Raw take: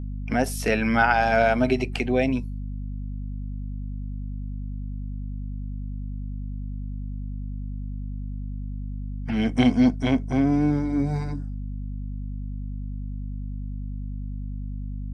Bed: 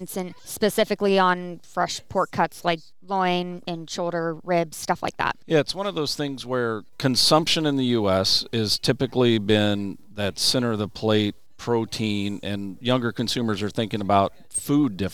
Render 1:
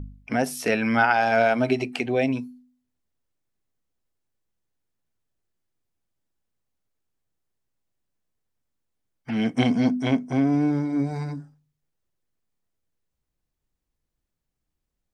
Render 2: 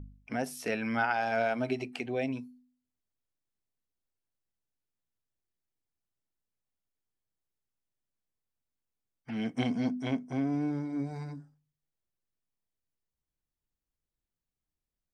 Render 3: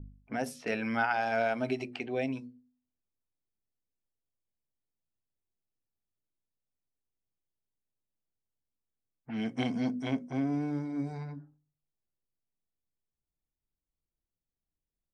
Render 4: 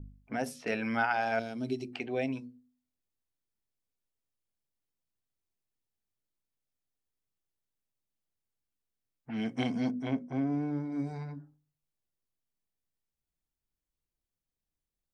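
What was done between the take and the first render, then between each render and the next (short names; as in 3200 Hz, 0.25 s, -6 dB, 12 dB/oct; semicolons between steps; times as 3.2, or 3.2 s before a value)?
de-hum 50 Hz, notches 5
gain -9.5 dB
low-pass opened by the level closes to 670 Hz, open at -29.5 dBFS; notches 60/120/180/240/300/360/420/480/540/600 Hz
1.39–1.93 band shelf 1200 Hz -14 dB 2.6 oct; 9.91–10.92 high shelf 3200 Hz -10.5 dB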